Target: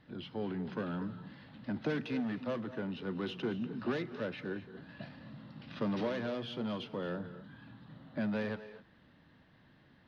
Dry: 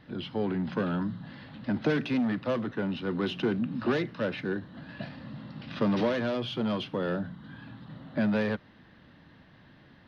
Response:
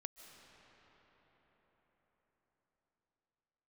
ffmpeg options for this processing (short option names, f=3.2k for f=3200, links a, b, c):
-filter_complex "[1:a]atrim=start_sample=2205,afade=t=out:st=0.23:d=0.01,atrim=end_sample=10584,asetrate=30429,aresample=44100[a];[0:a][a]afir=irnorm=-1:irlink=0,volume=-4dB"